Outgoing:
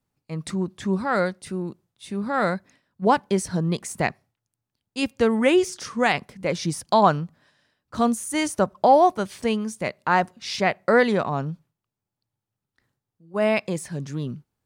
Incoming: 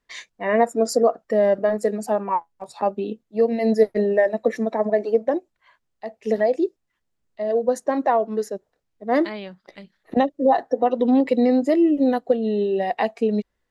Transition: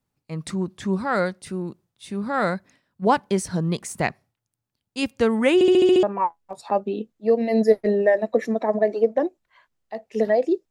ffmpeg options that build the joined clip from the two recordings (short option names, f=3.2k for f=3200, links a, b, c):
-filter_complex "[0:a]apad=whole_dur=10.7,atrim=end=10.7,asplit=7[a][b][c][d][e][f][g];[a]atrim=end=5.612[h];[b]atrim=start=5.538:end=5.612[i];[c]atrim=start=5.538:end=5.612[j];[d]atrim=start=5.538:end=5.612[k];[e]atrim=start=5.538:end=5.612[l];[f]atrim=start=5.538:end=5.612[m];[g]atrim=start=5.538:end=5.612[n];[1:a]atrim=start=2.138:end=6.81[o];[h][i]acrossfade=d=0.004:c1=hsin:c2=hsin[p];[p][j]acrossfade=d=0.004:c1=hsin:c2=hsin[q];[q][k]acrossfade=d=0.004:c1=hsin:c2=hsin[r];[r][l]acrossfade=d=0.004:c1=hsin:c2=hsin[s];[s][m]acrossfade=d=0.004:c1=hsin:c2=hsin[t];[t][n]acrossfade=d=0.004:c1=hsin:c2=hsin[u];[u][o]acrossfade=d=0.004:c1=hsin:c2=hsin"